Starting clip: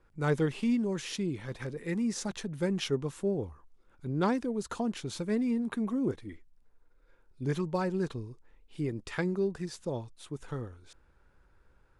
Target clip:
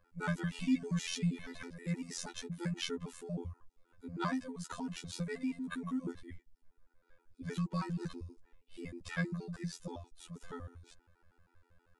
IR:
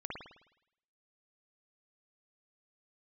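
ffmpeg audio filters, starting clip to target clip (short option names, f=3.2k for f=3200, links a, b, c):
-filter_complex "[0:a]asettb=1/sr,asplit=3[a][b][c];[a]atrim=end=0.524[d];[b]atrim=start=0.52:end=1.62,asetpts=PTS-STARTPTS,afade=t=in:d=0.004:c=qsin,afade=t=out:st=1.096:d=0.004:c=qsin,aecho=1:1:4.6:0.88,atrim=end_sample=48510[e];[c]atrim=start=1.616[f];[d][e]acrossfade=d=0.004:c1=hsin:c2=qsin[g];[g][f]acrossfade=d=0.004:c1=qsin:c2=hsin,afftfilt=real='hypot(re,im)*cos(PI*b)':imag='0':win_size=2048:overlap=0.75,acrossover=split=250|750|4000[h][i][j][k];[i]acompressor=threshold=-53dB:ratio=6[l];[h][l][j][k]amix=inputs=4:normalize=0,afftfilt=real='re*gt(sin(2*PI*6.3*pts/sr)*(1-2*mod(floor(b*sr/1024/250),2)),0)':imag='im*gt(sin(2*PI*6.3*pts/sr)*(1-2*mod(floor(b*sr/1024/250),2)),0)':win_size=1024:overlap=0.75,volume=3.5dB"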